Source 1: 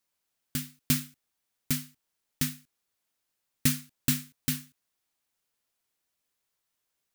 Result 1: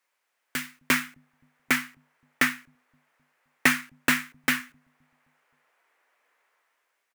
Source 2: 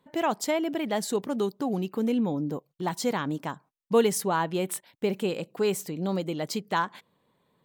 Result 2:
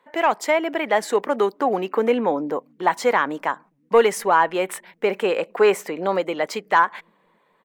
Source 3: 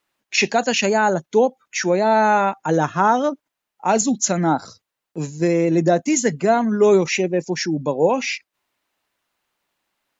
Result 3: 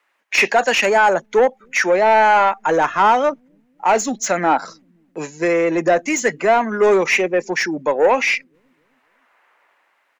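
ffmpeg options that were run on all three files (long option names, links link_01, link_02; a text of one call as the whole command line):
ffmpeg -i in.wav -filter_complex "[0:a]asplit=2[link_01][link_02];[link_02]highpass=frequency=720:poles=1,volume=15dB,asoftclip=type=tanh:threshold=-4.5dB[link_03];[link_01][link_03]amix=inputs=2:normalize=0,lowpass=frequency=4900:poles=1,volume=-6dB,equalizer=frequency=125:width_type=o:width=1:gain=-6,equalizer=frequency=500:width_type=o:width=1:gain=5,equalizer=frequency=1000:width_type=o:width=1:gain=4,equalizer=frequency=2000:width_type=o:width=1:gain=8,equalizer=frequency=4000:width_type=o:width=1:gain=-4,acrossover=split=240|2300[link_04][link_05][link_06];[link_04]aecho=1:1:261|522|783|1044:0.112|0.0595|0.0315|0.0167[link_07];[link_05]dynaudnorm=framelen=220:gausssize=7:maxgain=11.5dB[link_08];[link_07][link_08][link_06]amix=inputs=3:normalize=0,volume=-4.5dB" out.wav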